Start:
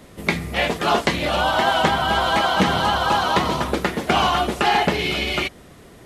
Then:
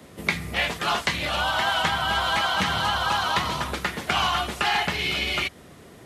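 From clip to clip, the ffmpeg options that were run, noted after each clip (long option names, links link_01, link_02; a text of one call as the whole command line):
ffmpeg -i in.wav -filter_complex "[0:a]highpass=67,acrossover=split=140|930|3900[link_01][link_02][link_03][link_04];[link_02]acompressor=threshold=-33dB:ratio=6[link_05];[link_01][link_05][link_03][link_04]amix=inputs=4:normalize=0,volume=-1.5dB" out.wav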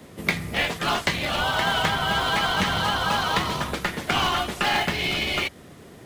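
ffmpeg -i in.wav -filter_complex "[0:a]asplit=2[link_01][link_02];[link_02]acrusher=samples=31:mix=1:aa=0.000001,volume=-9.5dB[link_03];[link_01][link_03]amix=inputs=2:normalize=0,equalizer=frequency=62:width_type=o:width=0.28:gain=-7" out.wav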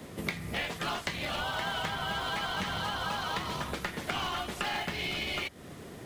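ffmpeg -i in.wav -af "acompressor=threshold=-34dB:ratio=3" out.wav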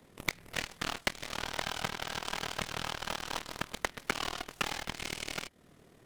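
ffmpeg -i in.wav -af "tremolo=f=39:d=0.621,aeval=exprs='0.126*(cos(1*acos(clip(val(0)/0.126,-1,1)))-cos(1*PI/2))+0.00794*(cos(3*acos(clip(val(0)/0.126,-1,1)))-cos(3*PI/2))+0.000794*(cos(5*acos(clip(val(0)/0.126,-1,1)))-cos(5*PI/2))+0.00447*(cos(6*acos(clip(val(0)/0.126,-1,1)))-cos(6*PI/2))+0.0178*(cos(7*acos(clip(val(0)/0.126,-1,1)))-cos(7*PI/2))':channel_layout=same,volume=6.5dB" out.wav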